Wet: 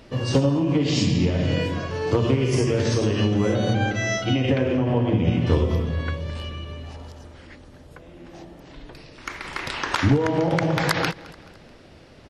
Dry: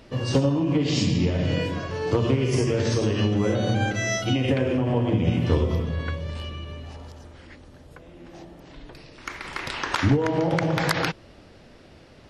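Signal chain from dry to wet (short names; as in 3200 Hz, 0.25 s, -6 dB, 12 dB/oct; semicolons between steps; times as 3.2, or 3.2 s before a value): 3.73–5.47 Bessel low-pass 5500 Hz, order 4; feedback echo 0.215 s, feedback 47%, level -20.5 dB; gain +1.5 dB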